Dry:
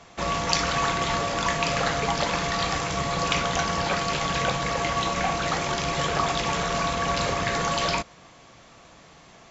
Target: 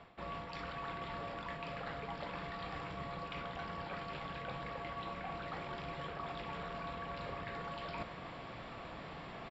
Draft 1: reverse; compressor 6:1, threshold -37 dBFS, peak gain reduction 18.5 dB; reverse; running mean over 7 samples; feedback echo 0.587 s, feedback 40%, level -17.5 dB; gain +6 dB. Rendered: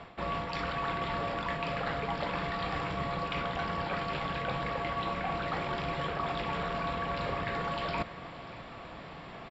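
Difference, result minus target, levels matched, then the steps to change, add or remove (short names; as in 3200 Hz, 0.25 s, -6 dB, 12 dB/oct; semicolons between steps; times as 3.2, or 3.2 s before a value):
compressor: peak gain reduction -9.5 dB
change: compressor 6:1, threshold -48.5 dBFS, peak gain reduction 28 dB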